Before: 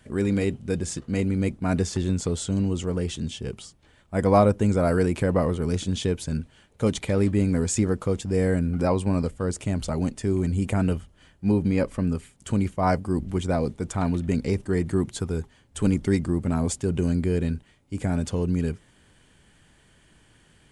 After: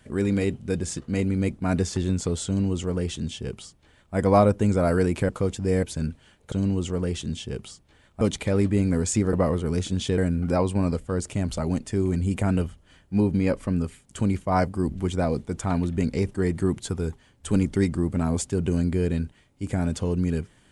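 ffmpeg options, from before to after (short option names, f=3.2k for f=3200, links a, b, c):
-filter_complex "[0:a]asplit=7[a][b][c][d][e][f][g];[a]atrim=end=5.292[h];[b]atrim=start=7.948:end=8.492[i];[c]atrim=start=6.138:end=6.832[j];[d]atrim=start=2.458:end=4.152[k];[e]atrim=start=6.828:end=7.952[l];[f]atrim=start=5.288:end=6.142[m];[g]atrim=start=8.488[n];[h][i]acrossfade=d=0.004:c1=hsin:c2=hsin[o];[o][j]acrossfade=d=0.004:c1=hsin:c2=hsin[p];[p][k]acrossfade=d=0.004:c1=hsin:c2=hsin[q];[q][l]acrossfade=d=0.004:c1=hsin:c2=hsin[r];[r][m]acrossfade=d=0.004:c1=hsin:c2=hsin[s];[s][n]acrossfade=d=0.004:c1=hsin:c2=hsin"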